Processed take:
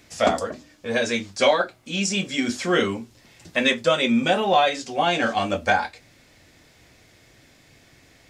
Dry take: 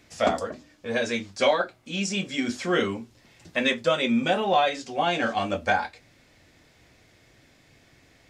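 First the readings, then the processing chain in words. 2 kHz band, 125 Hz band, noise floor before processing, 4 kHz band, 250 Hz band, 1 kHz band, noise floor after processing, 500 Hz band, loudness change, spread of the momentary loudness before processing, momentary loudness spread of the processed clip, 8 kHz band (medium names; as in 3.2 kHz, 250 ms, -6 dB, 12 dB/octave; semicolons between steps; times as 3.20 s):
+3.5 dB, +3.0 dB, -59 dBFS, +4.5 dB, +3.0 dB, +3.0 dB, -55 dBFS, +3.0 dB, +3.5 dB, 8 LU, 8 LU, +6.0 dB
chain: treble shelf 5.5 kHz +5 dB; trim +3 dB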